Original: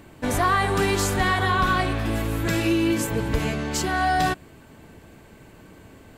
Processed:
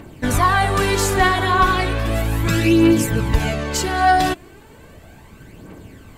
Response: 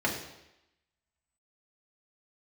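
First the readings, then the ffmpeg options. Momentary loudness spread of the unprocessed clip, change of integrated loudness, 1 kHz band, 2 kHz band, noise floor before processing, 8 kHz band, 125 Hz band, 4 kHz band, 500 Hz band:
5 LU, +5.5 dB, +6.0 dB, +4.5 dB, -49 dBFS, +4.5 dB, +5.5 dB, +4.5 dB, +5.0 dB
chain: -af "aphaser=in_gain=1:out_gain=1:delay=3.1:decay=0.49:speed=0.35:type=triangular,volume=1.5"

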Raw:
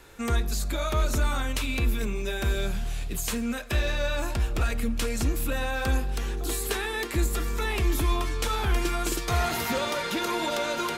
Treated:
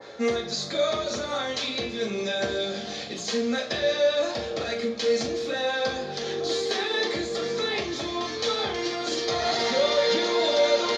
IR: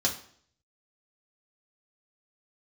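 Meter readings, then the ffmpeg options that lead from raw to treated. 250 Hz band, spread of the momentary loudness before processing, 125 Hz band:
0.0 dB, 4 LU, -13.5 dB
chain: -filter_complex "[0:a]areverse,acompressor=mode=upward:threshold=0.0447:ratio=2.5,areverse,alimiter=limit=0.0708:level=0:latency=1:release=183,highpass=260,equalizer=f=280:t=q:w=4:g=-8,equalizer=f=420:t=q:w=4:g=5,equalizer=f=630:t=q:w=4:g=7,equalizer=f=1000:t=q:w=4:g=-5,equalizer=f=1500:t=q:w=4:g=-7,equalizer=f=2700:t=q:w=4:g=-7,lowpass=f=4800:w=0.5412,lowpass=f=4800:w=1.3066,asplit=2[s0][s1];[s1]adelay=41,volume=0.282[s2];[s0][s2]amix=inputs=2:normalize=0,asplit=5[s3][s4][s5][s6][s7];[s4]adelay=351,afreqshift=-93,volume=0.0841[s8];[s5]adelay=702,afreqshift=-186,volume=0.0462[s9];[s6]adelay=1053,afreqshift=-279,volume=0.0254[s10];[s7]adelay=1404,afreqshift=-372,volume=0.014[s11];[s3][s8][s9][s10][s11]amix=inputs=5:normalize=0[s12];[1:a]atrim=start_sample=2205[s13];[s12][s13]afir=irnorm=-1:irlink=0,adynamicequalizer=threshold=0.00794:dfrequency=2000:dqfactor=0.7:tfrequency=2000:tqfactor=0.7:attack=5:release=100:ratio=0.375:range=3:mode=boostabove:tftype=highshelf,volume=0.841"

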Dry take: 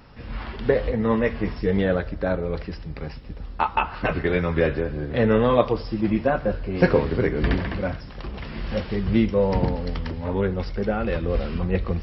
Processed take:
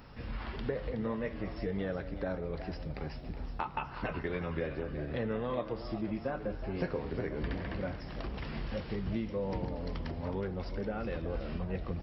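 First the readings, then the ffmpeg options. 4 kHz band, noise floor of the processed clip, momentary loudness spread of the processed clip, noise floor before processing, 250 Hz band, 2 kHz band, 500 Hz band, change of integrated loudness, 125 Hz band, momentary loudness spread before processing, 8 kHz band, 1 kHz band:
-11.5 dB, -44 dBFS, 5 LU, -38 dBFS, -13.0 dB, -13.5 dB, -14.0 dB, -13.5 dB, -12.0 dB, 14 LU, no reading, -13.5 dB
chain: -filter_complex "[0:a]crystalizer=i=1.5:c=0,acompressor=threshold=0.0251:ratio=3,highshelf=f=3800:g=-7,asplit=2[s0][s1];[s1]asplit=5[s2][s3][s4][s5][s6];[s2]adelay=370,afreqshift=97,volume=0.251[s7];[s3]adelay=740,afreqshift=194,volume=0.117[s8];[s4]adelay=1110,afreqshift=291,volume=0.0556[s9];[s5]adelay=1480,afreqshift=388,volume=0.026[s10];[s6]adelay=1850,afreqshift=485,volume=0.0123[s11];[s7][s8][s9][s10][s11]amix=inputs=5:normalize=0[s12];[s0][s12]amix=inputs=2:normalize=0,volume=0.668"

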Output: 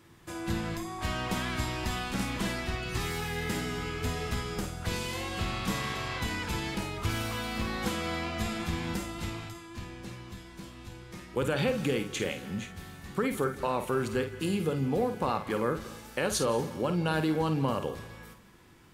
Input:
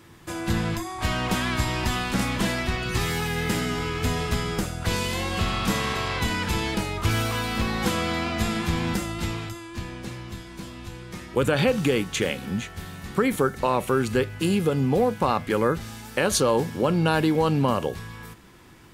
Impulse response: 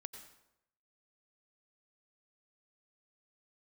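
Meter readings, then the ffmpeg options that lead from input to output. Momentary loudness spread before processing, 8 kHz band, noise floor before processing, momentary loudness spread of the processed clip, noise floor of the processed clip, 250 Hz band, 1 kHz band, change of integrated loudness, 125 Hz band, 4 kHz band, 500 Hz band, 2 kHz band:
14 LU, -7.0 dB, -42 dBFS, 14 LU, -49 dBFS, -7.0 dB, -7.0 dB, -7.0 dB, -7.0 dB, -7.0 dB, -7.0 dB, -7.0 dB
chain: -filter_complex "[0:a]asplit=2[s0][s1];[1:a]atrim=start_sample=2205,asetrate=37485,aresample=44100,adelay=51[s2];[s1][s2]afir=irnorm=-1:irlink=0,volume=0.562[s3];[s0][s3]amix=inputs=2:normalize=0,volume=0.422"

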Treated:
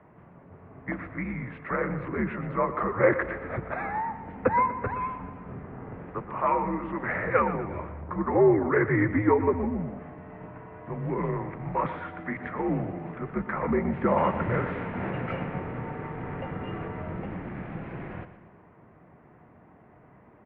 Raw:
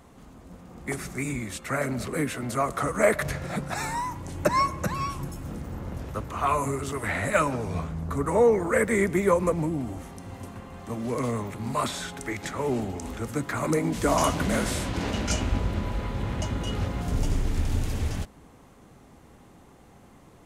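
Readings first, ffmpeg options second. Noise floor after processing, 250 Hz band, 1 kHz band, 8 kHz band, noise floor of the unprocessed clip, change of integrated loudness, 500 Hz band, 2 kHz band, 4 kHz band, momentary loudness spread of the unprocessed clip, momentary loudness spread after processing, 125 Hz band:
-55 dBFS, 0.0 dB, 0.0 dB, under -40 dB, -53 dBFS, -1.0 dB, -1.0 dB, -1.0 dB, under -15 dB, 13 LU, 15 LU, -3.0 dB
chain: -af "highpass=f=190:t=q:w=0.5412,highpass=f=190:t=q:w=1.307,lowpass=f=2300:t=q:w=0.5176,lowpass=f=2300:t=q:w=0.7071,lowpass=f=2300:t=q:w=1.932,afreqshift=-87,aecho=1:1:121|242|363|484|605:0.237|0.114|0.0546|0.0262|0.0126"

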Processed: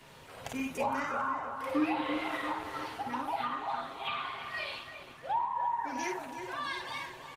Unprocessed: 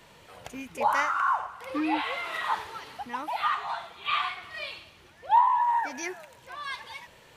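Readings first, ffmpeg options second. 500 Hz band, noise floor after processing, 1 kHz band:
0.0 dB, -52 dBFS, -7.5 dB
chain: -filter_complex "[0:a]aecho=1:1:7.5:0.41,asplit=2[s0][s1];[s1]aecho=0:1:28|53:0.141|0.631[s2];[s0][s2]amix=inputs=2:normalize=0,acrossover=split=480[s3][s4];[s4]acompressor=threshold=0.0224:ratio=8[s5];[s3][s5]amix=inputs=2:normalize=0,asplit=2[s6][s7];[s7]adelay=336,lowpass=f=1500:p=1,volume=0.501,asplit=2[s8][s9];[s9]adelay=336,lowpass=f=1500:p=1,volume=0.54,asplit=2[s10][s11];[s11]adelay=336,lowpass=f=1500:p=1,volume=0.54,asplit=2[s12][s13];[s13]adelay=336,lowpass=f=1500:p=1,volume=0.54,asplit=2[s14][s15];[s15]adelay=336,lowpass=f=1500:p=1,volume=0.54,asplit=2[s16][s17];[s17]adelay=336,lowpass=f=1500:p=1,volume=0.54,asplit=2[s18][s19];[s19]adelay=336,lowpass=f=1500:p=1,volume=0.54[s20];[s8][s10][s12][s14][s16][s18][s20]amix=inputs=7:normalize=0[s21];[s6][s21]amix=inputs=2:normalize=0" -ar 48000 -c:a libopus -b:a 20k

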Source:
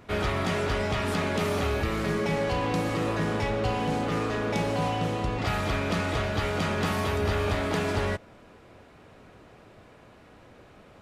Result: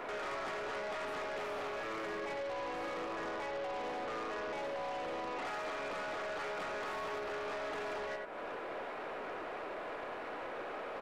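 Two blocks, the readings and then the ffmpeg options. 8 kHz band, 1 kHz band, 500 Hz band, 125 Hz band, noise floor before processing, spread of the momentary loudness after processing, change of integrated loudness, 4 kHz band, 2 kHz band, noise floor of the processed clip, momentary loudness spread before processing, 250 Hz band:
-14.5 dB, -8.0 dB, -9.5 dB, -30.0 dB, -53 dBFS, 3 LU, -12.0 dB, -12.5 dB, -8.5 dB, -43 dBFS, 1 LU, -18.0 dB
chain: -filter_complex "[0:a]acompressor=threshold=0.01:ratio=8,highpass=170,acrossover=split=360 2500:gain=0.0631 1 0.158[s0][s1][s2];[s0][s1][s2]amix=inputs=3:normalize=0,asplit=2[s3][s4];[s4]aecho=0:1:88:0.335[s5];[s3][s5]amix=inputs=2:normalize=0,alimiter=level_in=8.91:limit=0.0631:level=0:latency=1:release=17,volume=0.112,aeval=exprs='0.0075*(cos(1*acos(clip(val(0)/0.0075,-1,1)))-cos(1*PI/2))+0.000133*(cos(4*acos(clip(val(0)/0.0075,-1,1)))-cos(4*PI/2))+0.00119*(cos(5*acos(clip(val(0)/0.0075,-1,1)))-cos(5*PI/2))+0.000168*(cos(8*acos(clip(val(0)/0.0075,-1,1)))-cos(8*PI/2))':c=same,volume=3.16"

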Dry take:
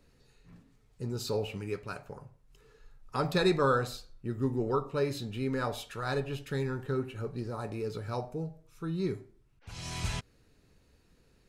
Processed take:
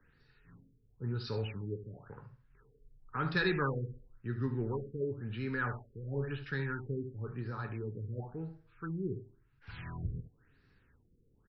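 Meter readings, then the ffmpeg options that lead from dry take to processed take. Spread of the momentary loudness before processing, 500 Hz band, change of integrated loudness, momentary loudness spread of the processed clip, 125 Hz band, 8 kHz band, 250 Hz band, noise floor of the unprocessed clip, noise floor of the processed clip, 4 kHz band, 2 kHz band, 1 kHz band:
14 LU, -7.0 dB, -4.0 dB, 12 LU, -1.0 dB, under -25 dB, -4.5 dB, -66 dBFS, -69 dBFS, -7.0 dB, +0.5 dB, -7.0 dB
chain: -filter_complex "[0:a]flanger=delay=6.2:depth=3.3:regen=84:speed=0.3:shape=triangular,equalizer=f=100:t=o:w=0.67:g=4,equalizer=f=630:t=o:w=0.67:g=-9,equalizer=f=1600:t=o:w=0.67:g=12,equalizer=f=6300:t=o:w=0.67:g=-3,aecho=1:1:73:0.266,acrossover=split=130|430|2000[s0][s1][s2][s3];[s2]asoftclip=type=tanh:threshold=0.0299[s4];[s0][s1][s4][s3]amix=inputs=4:normalize=0,afftfilt=real='re*lt(b*sr/1024,510*pow(6000/510,0.5+0.5*sin(2*PI*0.96*pts/sr)))':imag='im*lt(b*sr/1024,510*pow(6000/510,0.5+0.5*sin(2*PI*0.96*pts/sr)))':win_size=1024:overlap=0.75"

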